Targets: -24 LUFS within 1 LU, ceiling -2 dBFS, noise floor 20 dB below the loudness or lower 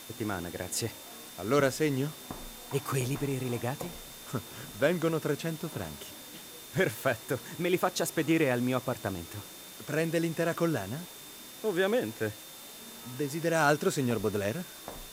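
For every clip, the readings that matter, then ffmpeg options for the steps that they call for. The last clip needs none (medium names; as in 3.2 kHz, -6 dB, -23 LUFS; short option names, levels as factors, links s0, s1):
steady tone 3.6 kHz; tone level -53 dBFS; noise floor -47 dBFS; noise floor target -51 dBFS; loudness -31.0 LUFS; peak level -12.0 dBFS; loudness target -24.0 LUFS
-> -af "bandreject=f=3600:w=30"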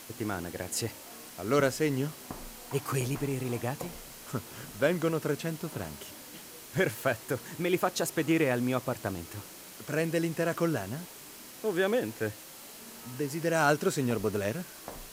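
steady tone not found; noise floor -48 dBFS; noise floor target -51 dBFS
-> -af "afftdn=nr=6:nf=-48"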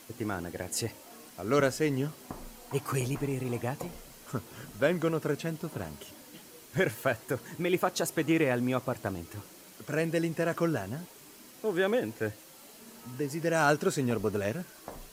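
noise floor -52 dBFS; loudness -31.5 LUFS; peak level -12.0 dBFS; loudness target -24.0 LUFS
-> -af "volume=2.37"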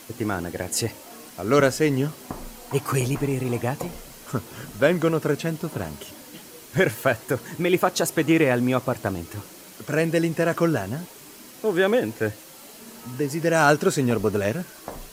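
loudness -24.0 LUFS; peak level -4.5 dBFS; noise floor -45 dBFS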